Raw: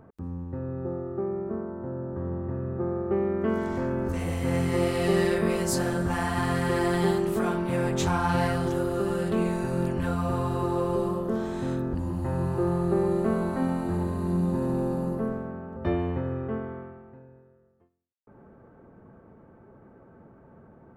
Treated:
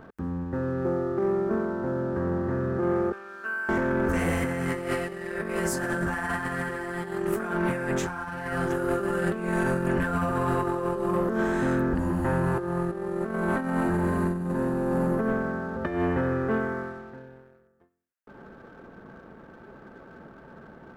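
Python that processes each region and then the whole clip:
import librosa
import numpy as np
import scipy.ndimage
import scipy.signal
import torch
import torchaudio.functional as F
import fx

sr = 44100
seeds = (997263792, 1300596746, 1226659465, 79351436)

y = fx.chain(x, sr, fx.double_bandpass(hz=2000.0, octaves=0.78),
    fx.air_absorb(metres=300.0), at=(3.12, 3.69))
y = fx.graphic_eq_15(y, sr, hz=(100, 1600, 4000), db=(-10, 10, -8))
y = fx.over_compress(y, sr, threshold_db=-29.0, ratio=-0.5)
y = fx.leveller(y, sr, passes=1)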